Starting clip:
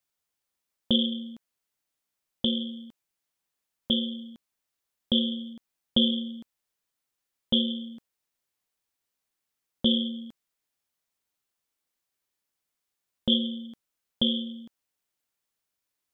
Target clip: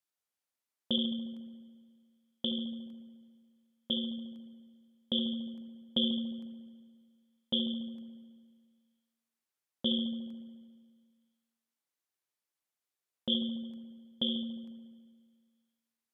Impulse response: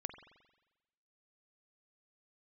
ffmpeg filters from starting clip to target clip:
-filter_complex "[0:a]highpass=f=190:p=1[a];[1:a]atrim=start_sample=2205,asetrate=27783,aresample=44100[b];[a][b]afir=irnorm=-1:irlink=0,volume=-6dB"

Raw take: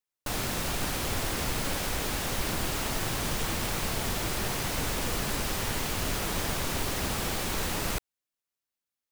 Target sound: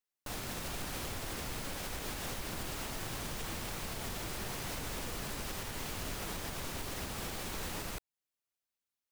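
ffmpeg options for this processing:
-af "alimiter=level_in=2.5dB:limit=-24dB:level=0:latency=1:release=270,volume=-2.5dB,volume=-3dB"

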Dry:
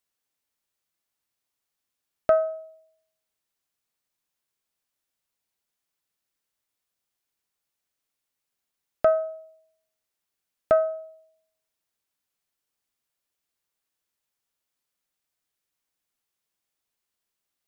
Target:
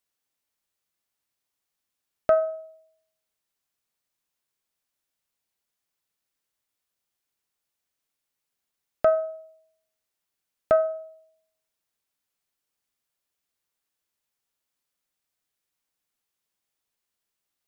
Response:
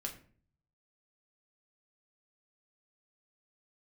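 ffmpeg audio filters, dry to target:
-af "bandreject=f=328.9:t=h:w=4,bandreject=f=657.8:t=h:w=4,bandreject=f=986.7:t=h:w=4,bandreject=f=1.3156k:t=h:w=4,bandreject=f=1.6445k:t=h:w=4"

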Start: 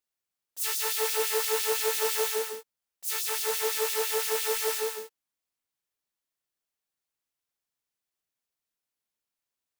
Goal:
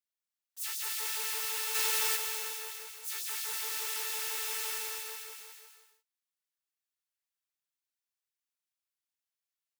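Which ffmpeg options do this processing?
-filter_complex "[0:a]highpass=1.1k,aecho=1:1:230|437|623.3|791|941.9:0.631|0.398|0.251|0.158|0.1,asplit=3[a][b][c];[a]afade=t=out:st=1.74:d=0.02[d];[b]acontrast=27,afade=t=in:st=1.74:d=0.02,afade=t=out:st=2.15:d=0.02[e];[c]afade=t=in:st=2.15:d=0.02[f];[d][e][f]amix=inputs=3:normalize=0,volume=-7dB"

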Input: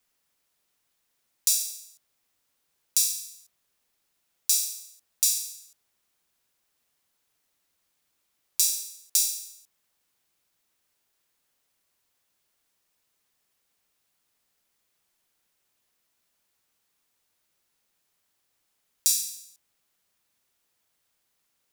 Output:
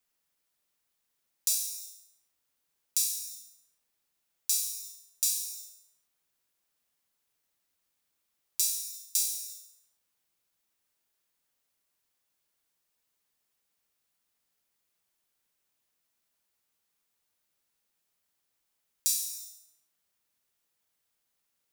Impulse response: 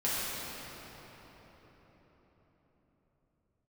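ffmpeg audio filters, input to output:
-filter_complex "[0:a]asplit=2[a][b];[1:a]atrim=start_sample=2205,afade=t=out:st=0.42:d=0.01,atrim=end_sample=18963,highshelf=f=6.3k:g=11.5[c];[b][c]afir=irnorm=-1:irlink=0,volume=-19.5dB[d];[a][d]amix=inputs=2:normalize=0,volume=-7dB"

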